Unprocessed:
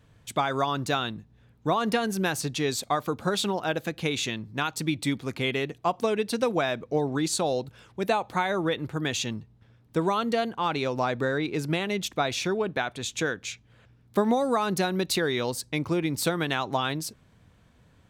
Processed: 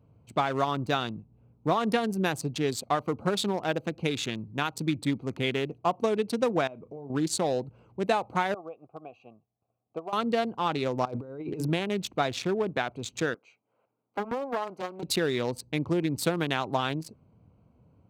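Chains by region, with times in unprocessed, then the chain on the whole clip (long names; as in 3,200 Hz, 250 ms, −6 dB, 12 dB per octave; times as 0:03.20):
0:06.67–0:07.10: downward compressor 3 to 1, threshold −42 dBFS + double-tracking delay 35 ms −13 dB
0:08.54–0:10.13: low-shelf EQ 100 Hz +11.5 dB + transient designer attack +8 dB, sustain −4 dB + formant filter a
0:11.05–0:11.70: high-shelf EQ 8,400 Hz +4.5 dB + mains-hum notches 50/100/150/200/250/300/350 Hz + compressor whose output falls as the input rises −32 dBFS, ratio −0.5
0:13.34–0:15.03: high-pass filter 670 Hz + high-shelf EQ 2,100 Hz −10.5 dB + highs frequency-modulated by the lows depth 0.8 ms
whole clip: adaptive Wiener filter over 25 samples; high-pass filter 70 Hz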